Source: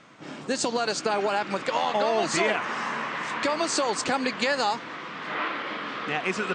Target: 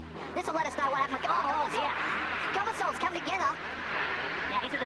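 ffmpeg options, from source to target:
ffmpeg -i in.wav -filter_complex "[0:a]asplit=2[link_01][link_02];[link_02]acrusher=samples=34:mix=1:aa=0.000001,volume=-9dB[link_03];[link_01][link_03]amix=inputs=2:normalize=0,acompressor=threshold=-27dB:ratio=4,equalizer=frequency=770:width=3:gain=8,aecho=1:1:511|1022|1533|2044:0.158|0.0634|0.0254|0.0101,adynamicequalizer=threshold=0.00631:dfrequency=1300:dqfactor=1.3:tfrequency=1300:tqfactor=1.3:attack=5:release=100:ratio=0.375:range=2.5:mode=boostabove:tftype=bell,aeval=exprs='val(0)+0.00794*(sin(2*PI*60*n/s)+sin(2*PI*2*60*n/s)/2+sin(2*PI*3*60*n/s)/3+sin(2*PI*4*60*n/s)/4+sin(2*PI*5*60*n/s)/5)':channel_layout=same,flanger=delay=5.1:depth=6.1:regen=-13:speed=0.98:shape=sinusoidal,lowpass=3300,asetrate=59535,aresample=44100,highpass=frequency=130:poles=1,acompressor=mode=upward:threshold=-35dB:ratio=2.5" -ar 48000 -c:a libopus -b:a 24k out.opus

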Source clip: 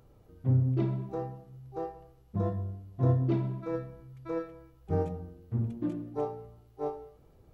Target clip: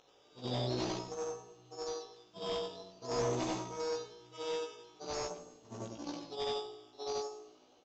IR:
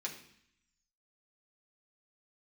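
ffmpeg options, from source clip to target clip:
-filter_complex "[0:a]afftfilt=real='re':imag='-im':win_size=8192:overlap=0.75,aeval=exprs='0.126*(cos(1*acos(clip(val(0)/0.126,-1,1)))-cos(1*PI/2))+0.00126*(cos(2*acos(clip(val(0)/0.126,-1,1)))-cos(2*PI/2))+0.00501*(cos(5*acos(clip(val(0)/0.126,-1,1)))-cos(5*PI/2))+0.0141*(cos(7*acos(clip(val(0)/0.126,-1,1)))-cos(7*PI/2))':channel_layout=same,highpass=610,asplit=2[link_01][link_02];[link_02]acompressor=threshold=-59dB:ratio=8,volume=2dB[link_03];[link_01][link_03]amix=inputs=2:normalize=0,acrusher=samples=8:mix=1:aa=0.000001:lfo=1:lforange=4.8:lforate=0.5,aexciter=amount=5.3:drive=4.6:freq=2900,asoftclip=type=hard:threshold=-36dB,aemphasis=mode=reproduction:type=75fm,asplit=2[link_04][link_05];[link_05]adelay=16,volume=-2.5dB[link_06];[link_04][link_06]amix=inputs=2:normalize=0,asplit=2[link_07][link_08];[link_08]asplit=3[link_09][link_10][link_11];[link_09]adelay=146,afreqshift=-58,volume=-21.5dB[link_12];[link_10]adelay=292,afreqshift=-116,volume=-28.4dB[link_13];[link_11]adelay=438,afreqshift=-174,volume=-35.4dB[link_14];[link_12][link_13][link_14]amix=inputs=3:normalize=0[link_15];[link_07][link_15]amix=inputs=2:normalize=0,aresample=16000,aresample=44100,asetrate=42336,aresample=44100,volume=7dB"

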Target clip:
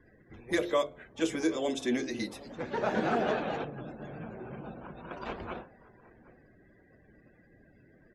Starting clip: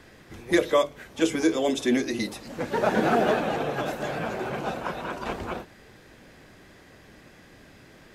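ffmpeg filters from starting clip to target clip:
ffmpeg -i in.wav -filter_complex "[0:a]bandreject=frequency=87.46:width_type=h:width=4,bandreject=frequency=174.92:width_type=h:width=4,bandreject=frequency=262.38:width_type=h:width=4,bandreject=frequency=349.84:width_type=h:width=4,bandreject=frequency=437.3:width_type=h:width=4,bandreject=frequency=524.76:width_type=h:width=4,bandreject=frequency=612.22:width_type=h:width=4,bandreject=frequency=699.68:width_type=h:width=4,bandreject=frequency=787.14:width_type=h:width=4,asplit=2[link_01][link_02];[link_02]aecho=0:1:766:0.0944[link_03];[link_01][link_03]amix=inputs=2:normalize=0,asettb=1/sr,asplit=3[link_04][link_05][link_06];[link_04]atrim=end=3.644[link_07];[link_05]atrim=start=3.64:end=5.11,asetpts=PTS-STARTPTS,afade=type=in:duration=0.004:curve=qsin,afade=type=out:start_time=1.466:duration=0.004:curve=qsin,acrossover=split=330[link_08][link_09];[link_09]acompressor=threshold=-39dB:ratio=10[link_10];[link_08][link_10]amix=inputs=2:normalize=0[link_11];[link_06]atrim=start=5.106[link_12];[link_07][link_11]acrossfade=duration=0.004:curve1=hsin:curve2=qsin[link_13];[link_13][link_12]acrossfade=duration=0.004:curve1=qsin:curve2=hsin,afftdn=noise_reduction=29:noise_floor=-50,volume=-6.5dB" out.wav

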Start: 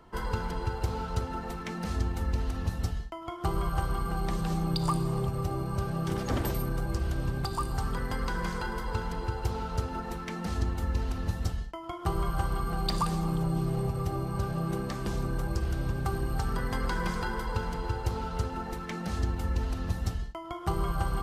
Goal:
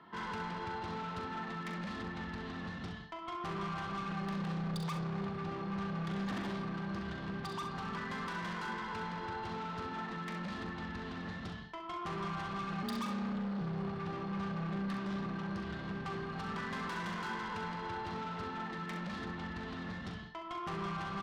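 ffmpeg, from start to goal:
ffmpeg -i in.wav -filter_complex "[0:a]highpass=170,equalizer=frequency=190:width_type=q:width=4:gain=10,equalizer=frequency=510:width_type=q:width=4:gain=-8,equalizer=frequency=1100:width_type=q:width=4:gain=6,equalizer=frequency=1800:width_type=q:width=4:gain=8,equalizer=frequency=3500:width_type=q:width=4:gain=6,lowpass=frequency=4400:width=0.5412,lowpass=frequency=4400:width=1.3066,asoftclip=type=tanh:threshold=-34.5dB,aecho=1:1:41|66:0.376|0.376,asettb=1/sr,asplit=3[link_01][link_02][link_03];[link_01]atrim=end=12.834[link_04];[link_02]atrim=start=12.83:end=13.61,asetpts=PTS-STARTPTS,afade=type=in:duration=0.004:curve=qsin,afade=type=out:start_time=0.776:duration=0.004:curve=qsin,afreqshift=34[link_05];[link_03]atrim=start=13.606[link_06];[link_04][link_05]acrossfade=duration=0.004:curve1=hsin:curve2=qsin[link_07];[link_07][link_06]acrossfade=duration=0.004:curve1=qsin:curve2=hsin,volume=-3dB" out.wav

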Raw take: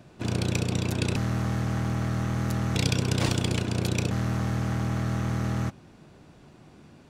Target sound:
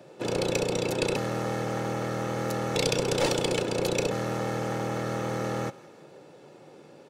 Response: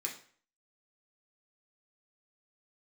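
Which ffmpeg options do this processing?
-filter_complex "[0:a]highpass=frequency=150:width=0.5412,highpass=frequency=150:width=1.3066,equalizer=frequency=550:width_type=o:width=0.57:gain=12,aecho=1:1:2.3:0.5,acrossover=split=650[link_01][link_02];[link_01]aeval=exprs='clip(val(0),-1,0.0447)':channel_layout=same[link_03];[link_02]aecho=1:1:167|334|501|668:0.1|0.051|0.026|0.0133[link_04];[link_03][link_04]amix=inputs=2:normalize=0"

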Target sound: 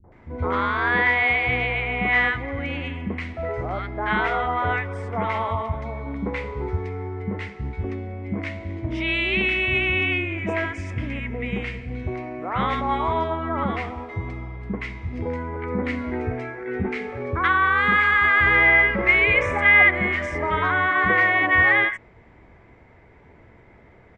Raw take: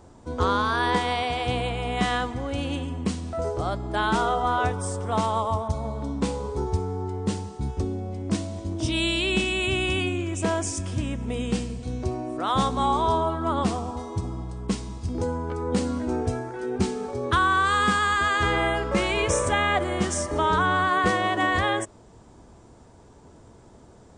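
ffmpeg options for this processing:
ffmpeg -i in.wav -filter_complex "[0:a]lowpass=frequency=2100:width_type=q:width=8.5,acrossover=split=240|1100[link_01][link_02][link_03];[link_02]adelay=40[link_04];[link_03]adelay=120[link_05];[link_01][link_04][link_05]amix=inputs=3:normalize=0" out.wav

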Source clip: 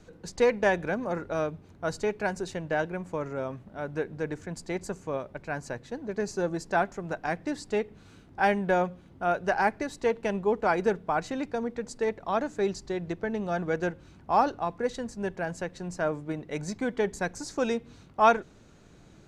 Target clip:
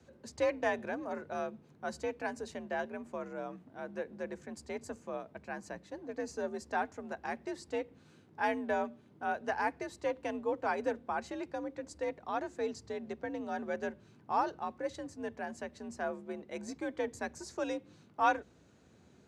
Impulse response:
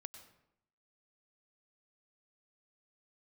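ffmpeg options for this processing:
-af "afreqshift=57,volume=-8dB"

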